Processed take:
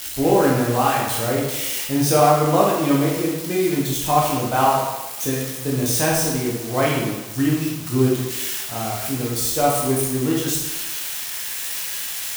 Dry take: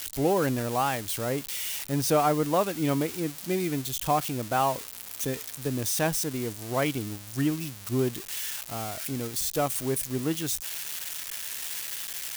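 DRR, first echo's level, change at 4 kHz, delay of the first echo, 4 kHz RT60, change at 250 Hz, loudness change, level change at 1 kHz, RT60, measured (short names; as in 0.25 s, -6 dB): -4.5 dB, none, +7.5 dB, none, 0.90 s, +8.5 dB, +8.0 dB, +9.0 dB, 1.1 s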